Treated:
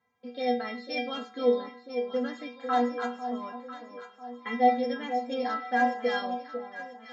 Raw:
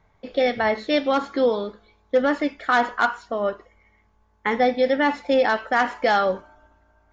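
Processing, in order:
high-pass filter 94 Hz 24 dB per octave
stiff-string resonator 240 Hz, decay 0.38 s, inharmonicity 0.008
delay that swaps between a low-pass and a high-pass 498 ms, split 960 Hz, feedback 64%, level −8 dB
level +5.5 dB

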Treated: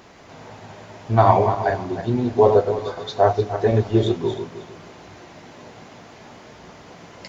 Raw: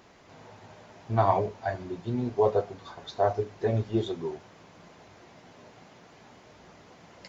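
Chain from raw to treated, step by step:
feedback delay that plays each chunk backwards 155 ms, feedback 46%, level −7 dB
level +8.5 dB

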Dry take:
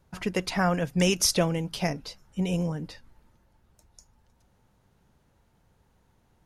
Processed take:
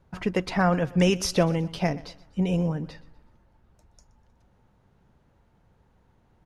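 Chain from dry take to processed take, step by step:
low-pass filter 2,200 Hz 6 dB per octave
on a send: repeating echo 123 ms, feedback 40%, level −20 dB
on the sum: level +3 dB

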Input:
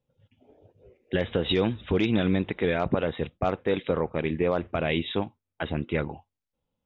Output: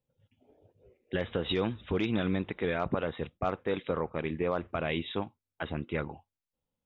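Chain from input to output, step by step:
dynamic equaliser 1,200 Hz, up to +5 dB, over −43 dBFS, Q 1.8
level −6 dB

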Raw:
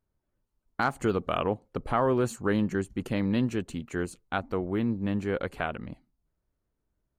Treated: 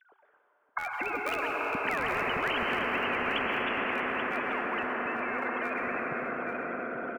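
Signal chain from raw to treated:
three sine waves on the formant tracks
source passing by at 0:02.37, 7 m/s, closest 4 metres
low-pass that shuts in the quiet parts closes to 2,100 Hz, open at −28 dBFS
hum removal 386.6 Hz, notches 30
treble cut that deepens with the level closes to 2,700 Hz, closed at −23.5 dBFS
parametric band 1,300 Hz +8 dB 1.2 octaves
reversed playback
upward compression, threshold −39 dBFS
reversed playback
phase shifter 0.47 Hz, delay 2 ms, feedback 36%
single-tap delay 834 ms −11 dB
on a send at −3 dB: convolution reverb RT60 5.6 s, pre-delay 100 ms
on the sum: every bin compressed towards the loudest bin 10 to 1
level −5 dB

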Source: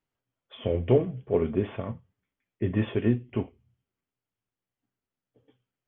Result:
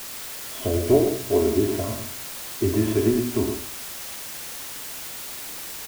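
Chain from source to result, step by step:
peak hold with a decay on every bin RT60 0.45 s
high-shelf EQ 2,200 Hz −12 dB
mains-hum notches 60/120/180/240/300 Hz
comb filter 3 ms, depth 92%
in parallel at −1.5 dB: downward compressor, threshold −34 dBFS, peak gain reduction 19 dB
on the sum: bit-depth reduction 6 bits, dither triangular
on a send: single-tap delay 111 ms −7.5 dB

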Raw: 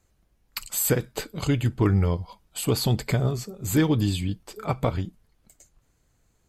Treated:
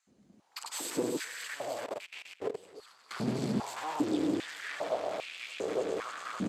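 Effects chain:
feedback delay that plays each chunk backwards 143 ms, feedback 79%, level −8 dB
camcorder AGC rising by 12 dB per second
parametric band 2,100 Hz −7 dB 2.6 octaves
tube saturation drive 38 dB, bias 0.65
multiband delay without the direct sound highs, lows 70 ms, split 1,200 Hz
in parallel at −7 dB: bit reduction 7 bits
on the sum: high-frequency loss of the air 82 metres
on a send: delay with a high-pass on its return 100 ms, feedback 74%, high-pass 3,200 Hz, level −8 dB
on the sum: brickwall limiter −36.5 dBFS, peak gain reduction 8.5 dB
0:01.86–0:03.11: output level in coarse steps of 20 dB
high-pass on a step sequencer 2.5 Hz 220–2,500 Hz
level +8 dB

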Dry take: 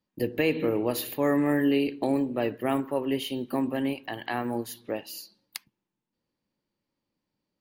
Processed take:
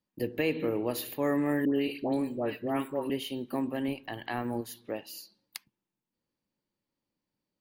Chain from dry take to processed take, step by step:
0:01.65–0:03.10: all-pass dispersion highs, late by 104 ms, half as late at 1,200 Hz
0:03.88–0:04.61: low-shelf EQ 86 Hz +11.5 dB
level −4 dB

